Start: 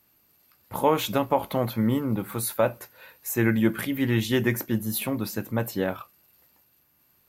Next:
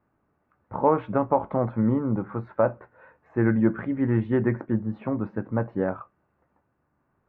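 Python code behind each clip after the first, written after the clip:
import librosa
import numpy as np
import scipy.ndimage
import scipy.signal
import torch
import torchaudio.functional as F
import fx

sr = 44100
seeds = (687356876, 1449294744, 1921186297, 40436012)

y = scipy.signal.sosfilt(scipy.signal.butter(4, 1500.0, 'lowpass', fs=sr, output='sos'), x)
y = y * librosa.db_to_amplitude(1.0)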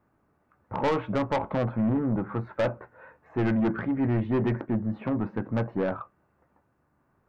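y = 10.0 ** (-23.0 / 20.0) * np.tanh(x / 10.0 ** (-23.0 / 20.0))
y = y * librosa.db_to_amplitude(2.5)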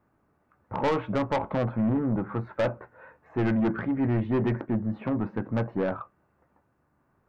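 y = x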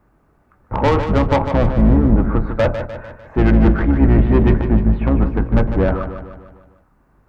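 y = fx.octave_divider(x, sr, octaves=2, level_db=3.0)
y = fx.echo_feedback(y, sr, ms=150, feedback_pct=51, wet_db=-9.0)
y = y * librosa.db_to_amplitude(9.0)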